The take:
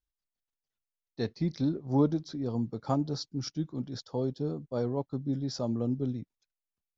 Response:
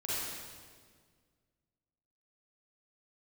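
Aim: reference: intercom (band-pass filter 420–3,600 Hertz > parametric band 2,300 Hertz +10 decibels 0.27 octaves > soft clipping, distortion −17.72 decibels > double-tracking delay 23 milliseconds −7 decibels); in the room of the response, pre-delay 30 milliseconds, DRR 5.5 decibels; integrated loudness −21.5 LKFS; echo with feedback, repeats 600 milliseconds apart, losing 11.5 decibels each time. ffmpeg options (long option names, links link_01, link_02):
-filter_complex "[0:a]aecho=1:1:600|1200|1800:0.266|0.0718|0.0194,asplit=2[link_01][link_02];[1:a]atrim=start_sample=2205,adelay=30[link_03];[link_02][link_03]afir=irnorm=-1:irlink=0,volume=-10.5dB[link_04];[link_01][link_04]amix=inputs=2:normalize=0,highpass=420,lowpass=3600,equalizer=frequency=2300:width_type=o:width=0.27:gain=10,asoftclip=threshold=-24.5dB,asplit=2[link_05][link_06];[link_06]adelay=23,volume=-7dB[link_07];[link_05][link_07]amix=inputs=2:normalize=0,volume=16dB"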